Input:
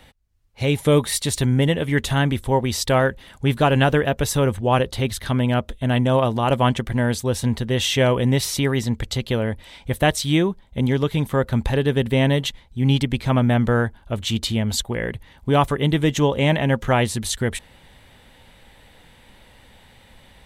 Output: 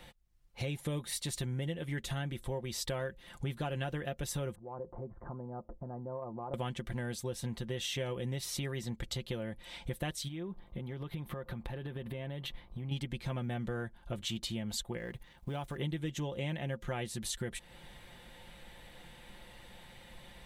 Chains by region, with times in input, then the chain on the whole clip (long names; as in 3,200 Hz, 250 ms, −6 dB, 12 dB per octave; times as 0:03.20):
0:04.55–0:06.54: Butterworth low-pass 1,100 Hz + low-shelf EQ 140 Hz −9 dB + downward compressor 3 to 1, threshold −38 dBFS
0:10.27–0:12.91: parametric band 7,000 Hz −14 dB 0.99 octaves + downward compressor, threshold −31 dBFS + hum with harmonics 50 Hz, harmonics 24, −60 dBFS
0:14.97–0:15.77: mu-law and A-law mismatch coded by A + downward compressor 1.5 to 1, threshold −35 dBFS
whole clip: comb filter 5.7 ms, depth 53%; dynamic equaliser 1,000 Hz, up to −4 dB, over −31 dBFS, Q 1.3; downward compressor 4 to 1, threshold −32 dBFS; level −4.5 dB